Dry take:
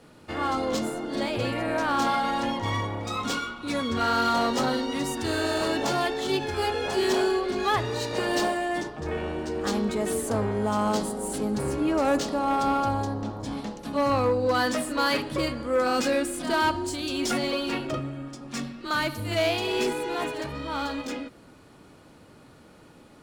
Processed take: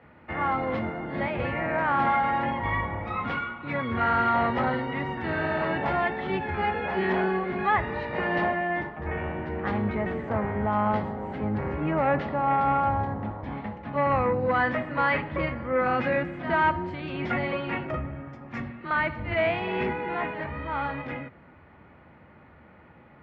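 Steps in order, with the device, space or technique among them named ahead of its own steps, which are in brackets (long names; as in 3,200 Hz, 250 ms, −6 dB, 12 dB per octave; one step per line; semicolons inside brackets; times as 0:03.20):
0:17.83–0:18.69: high shelf with overshoot 5,000 Hz +8.5 dB, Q 1.5
sub-octave bass pedal (sub-octave generator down 1 octave, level −2 dB; loudspeaker in its box 66–2,400 Hz, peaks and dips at 74 Hz +5 dB, 120 Hz −7 dB, 290 Hz −6 dB, 430 Hz −5 dB, 860 Hz +3 dB, 2,000 Hz +8 dB)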